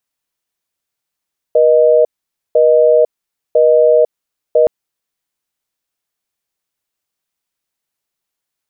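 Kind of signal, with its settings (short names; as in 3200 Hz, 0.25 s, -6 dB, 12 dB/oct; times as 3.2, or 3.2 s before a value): call progress tone busy tone, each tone -9 dBFS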